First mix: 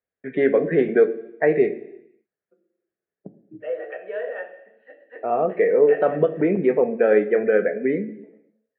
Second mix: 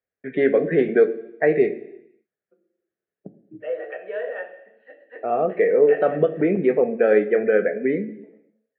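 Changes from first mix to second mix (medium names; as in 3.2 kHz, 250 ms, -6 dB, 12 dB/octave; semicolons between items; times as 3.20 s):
first voice: add peaking EQ 970 Hz -10 dB 0.21 oct; master: remove distance through air 96 m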